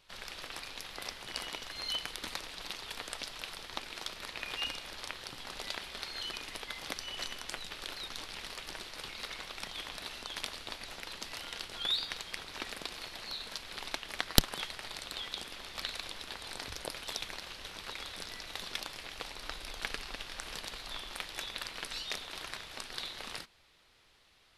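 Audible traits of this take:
background noise floor −52 dBFS
spectral slope −2.5 dB per octave

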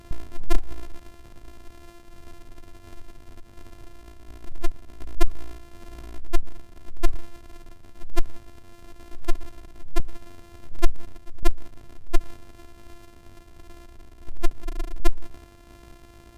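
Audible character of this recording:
a buzz of ramps at a fixed pitch in blocks of 128 samples
tremolo saw down 1.4 Hz, depth 30%
Ogg Vorbis

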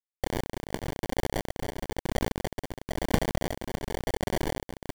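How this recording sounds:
a quantiser's noise floor 6 bits, dither none
tremolo triangle 1 Hz, depth 70%
aliases and images of a low sample rate 1,300 Hz, jitter 0%

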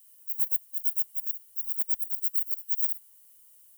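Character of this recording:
background noise floor −57 dBFS
spectral slope +5.0 dB per octave

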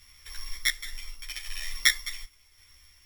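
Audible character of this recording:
a buzz of ramps at a fixed pitch in blocks of 8 samples
sample-and-hold tremolo
a quantiser's noise floor 12 bits, dither none
a shimmering, thickened sound

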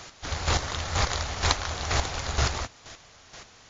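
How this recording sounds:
a quantiser's noise floor 8 bits, dither triangular
chopped level 2.1 Hz, depth 65%, duty 20%
WMA

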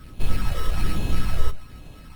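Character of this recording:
a buzz of ramps at a fixed pitch in blocks of 8 samples
phaser sweep stages 12, 1.2 Hz, lowest notch 230–1,900 Hz
aliases and images of a low sample rate 6,800 Hz, jitter 0%
Opus

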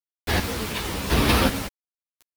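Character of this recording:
chopped level 0.91 Hz, depth 65%, duty 35%
a quantiser's noise floor 6 bits, dither none
a shimmering, thickened sound

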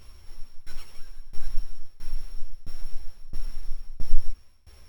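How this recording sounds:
a buzz of ramps at a fixed pitch in blocks of 8 samples
tremolo saw down 1.5 Hz, depth 95%
a shimmering, thickened sound

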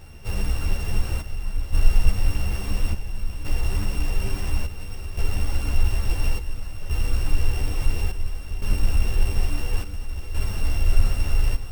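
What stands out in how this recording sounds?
a buzz of ramps at a fixed pitch in blocks of 16 samples
chopped level 0.58 Hz, depth 65%, duty 70%
a shimmering, thickened sound

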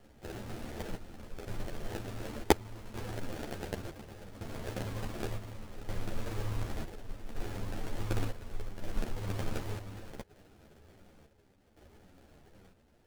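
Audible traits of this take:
aliases and images of a low sample rate 1,100 Hz, jitter 20%
chopped level 0.68 Hz, depth 60%, duty 65%
a shimmering, thickened sound

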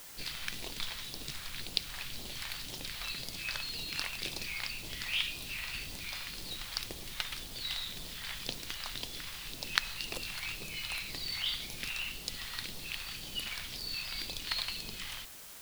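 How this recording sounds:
phaser sweep stages 2, 1.9 Hz, lowest notch 320–1,500 Hz
a quantiser's noise floor 8 bits, dither triangular

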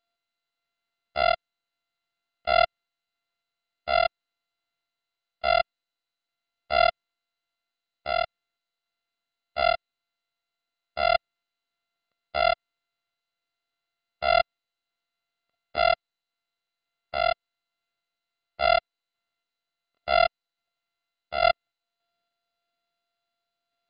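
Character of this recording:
a buzz of ramps at a fixed pitch in blocks of 64 samples
sample-and-hold tremolo 3.5 Hz
MP2

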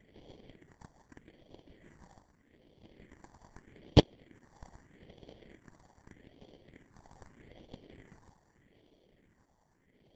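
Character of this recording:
sample-and-hold tremolo 1.8 Hz
aliases and images of a low sample rate 1,300 Hz, jitter 0%
phaser sweep stages 4, 0.81 Hz, lowest notch 430–1,500 Hz
Opus

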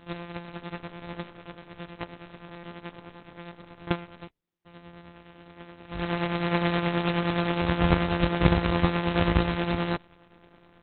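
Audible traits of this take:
a buzz of ramps at a fixed pitch in blocks of 256 samples
tremolo triangle 9.5 Hz, depth 60%
aliases and images of a low sample rate 8,600 Hz, jitter 0%
Opus

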